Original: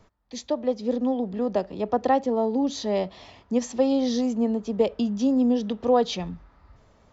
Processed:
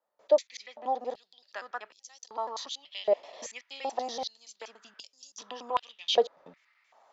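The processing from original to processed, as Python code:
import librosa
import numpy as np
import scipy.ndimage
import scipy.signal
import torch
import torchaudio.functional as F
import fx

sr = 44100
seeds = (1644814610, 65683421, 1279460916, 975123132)

y = fx.block_reorder(x, sr, ms=95.0, group=3)
y = fx.filter_held_highpass(y, sr, hz=2.6, low_hz=550.0, high_hz=6000.0)
y = y * librosa.db_to_amplitude(-5.0)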